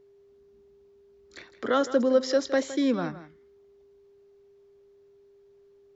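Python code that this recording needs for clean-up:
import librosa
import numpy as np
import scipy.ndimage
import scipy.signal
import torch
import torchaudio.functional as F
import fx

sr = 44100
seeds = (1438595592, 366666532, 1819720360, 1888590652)

y = fx.notch(x, sr, hz=400.0, q=30.0)
y = fx.fix_echo_inverse(y, sr, delay_ms=163, level_db=-14.5)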